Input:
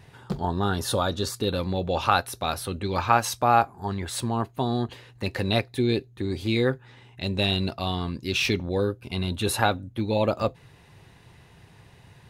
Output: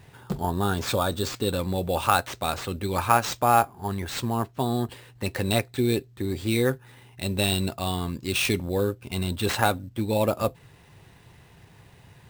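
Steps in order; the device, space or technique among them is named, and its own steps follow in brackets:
early companding sampler (sample-rate reduction 12,000 Hz, jitter 0%; log-companded quantiser 8 bits)

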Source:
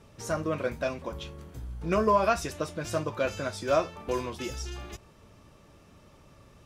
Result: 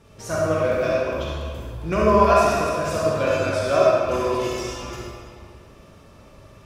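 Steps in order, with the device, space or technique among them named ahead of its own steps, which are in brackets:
tunnel (flutter between parallel walls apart 11.9 metres, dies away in 0.48 s; convolution reverb RT60 2.2 s, pre-delay 33 ms, DRR −5 dB)
level +1.5 dB

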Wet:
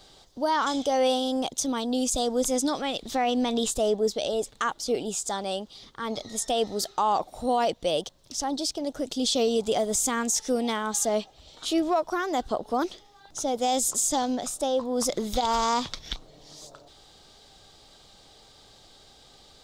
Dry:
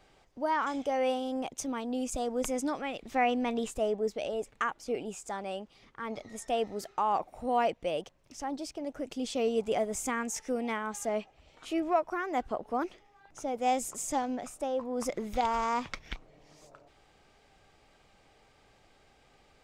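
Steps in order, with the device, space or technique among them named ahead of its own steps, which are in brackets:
over-bright horn tweeter (high shelf with overshoot 3,000 Hz +7 dB, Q 3; brickwall limiter −22 dBFS, peak gain reduction 11 dB)
level +6.5 dB

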